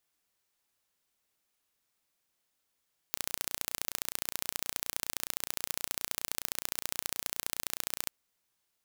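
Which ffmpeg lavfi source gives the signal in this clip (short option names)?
-f lavfi -i "aevalsrc='0.631*eq(mod(n,1490),0)*(0.5+0.5*eq(mod(n,2980),0))':d=4.96:s=44100"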